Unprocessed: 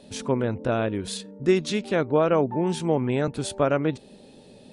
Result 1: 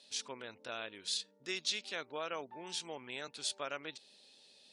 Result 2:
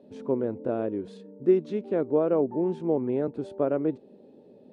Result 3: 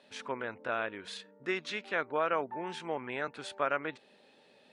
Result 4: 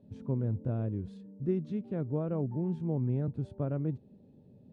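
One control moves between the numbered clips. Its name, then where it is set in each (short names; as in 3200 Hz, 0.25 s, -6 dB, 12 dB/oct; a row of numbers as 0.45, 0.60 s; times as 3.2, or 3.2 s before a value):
band-pass, frequency: 4700, 370, 1700, 110 Hz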